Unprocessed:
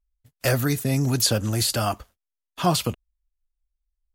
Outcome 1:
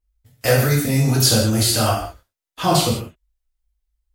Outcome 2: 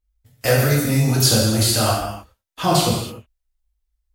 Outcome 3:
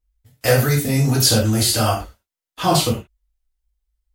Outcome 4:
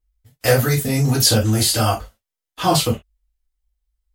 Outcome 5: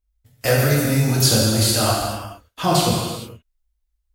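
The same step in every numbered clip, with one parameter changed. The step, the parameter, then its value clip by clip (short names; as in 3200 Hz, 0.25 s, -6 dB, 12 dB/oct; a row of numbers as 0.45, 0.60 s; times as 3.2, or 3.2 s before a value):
non-linear reverb, gate: 220, 330, 140, 90, 490 ms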